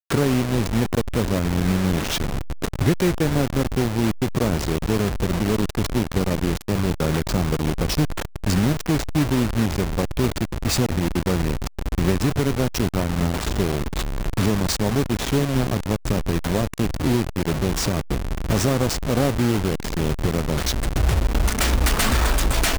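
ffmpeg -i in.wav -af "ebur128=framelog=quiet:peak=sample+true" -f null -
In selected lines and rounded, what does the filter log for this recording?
Integrated loudness:
  I:         -22.6 LUFS
  Threshold: -32.6 LUFS
Loudness range:
  LRA:         1.1 LU
  Threshold: -42.8 LUFS
  LRA low:   -23.2 LUFS
  LRA high:  -22.1 LUFS
Sample peak:
  Peak:       -6.9 dBFS
True peak:
  Peak:       -6.6 dBFS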